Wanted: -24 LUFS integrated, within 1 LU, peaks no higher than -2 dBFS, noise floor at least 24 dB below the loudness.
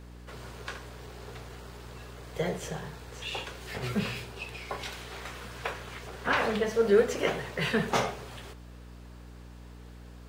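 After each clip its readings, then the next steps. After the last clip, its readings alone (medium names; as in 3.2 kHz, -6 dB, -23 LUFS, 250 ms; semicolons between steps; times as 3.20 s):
hum 60 Hz; highest harmonic 300 Hz; hum level -45 dBFS; loudness -31.5 LUFS; peak level -10.5 dBFS; loudness target -24.0 LUFS
-> de-hum 60 Hz, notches 5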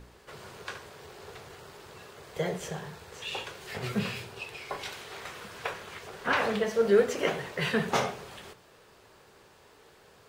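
hum not found; loudness -31.5 LUFS; peak level -10.5 dBFS; loudness target -24.0 LUFS
-> trim +7.5 dB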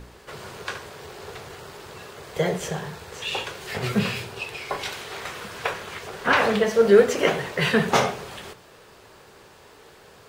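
loudness -24.0 LUFS; peak level -3.0 dBFS; noise floor -50 dBFS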